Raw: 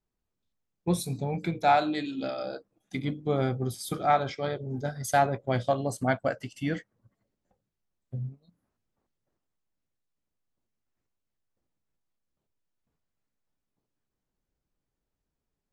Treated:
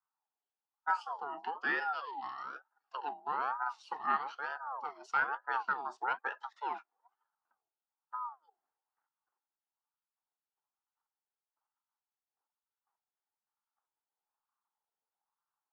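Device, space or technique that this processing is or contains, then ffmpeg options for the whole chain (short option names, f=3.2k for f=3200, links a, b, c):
voice changer toy: -af "highpass=44,aeval=exprs='val(0)*sin(2*PI*810*n/s+810*0.4/1.1*sin(2*PI*1.1*n/s))':c=same,highpass=580,equalizer=f=590:t=q:w=4:g=-9,equalizer=f=860:t=q:w=4:g=8,equalizer=f=1.4k:t=q:w=4:g=5,equalizer=f=2.3k:t=q:w=4:g=-8,equalizer=f=3.8k:t=q:w=4:g=-7,lowpass=f=4.5k:w=0.5412,lowpass=f=4.5k:w=1.3066,volume=-6dB"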